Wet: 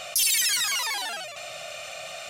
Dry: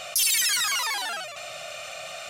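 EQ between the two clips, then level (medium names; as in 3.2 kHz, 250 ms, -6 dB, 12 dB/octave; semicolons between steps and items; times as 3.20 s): dynamic bell 1.3 kHz, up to -6 dB, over -46 dBFS, Q 2.7; 0.0 dB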